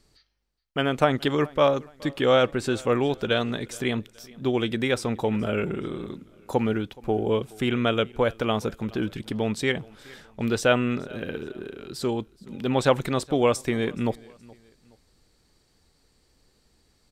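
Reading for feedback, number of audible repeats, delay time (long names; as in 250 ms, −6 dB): 38%, 2, 422 ms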